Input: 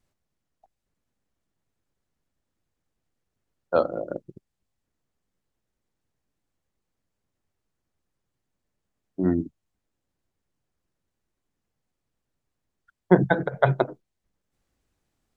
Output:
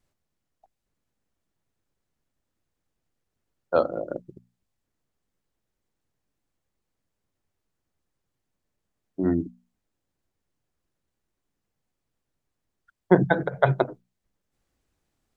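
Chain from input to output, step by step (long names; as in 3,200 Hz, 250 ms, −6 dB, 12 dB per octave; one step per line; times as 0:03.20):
mains-hum notches 60/120/180/240 Hz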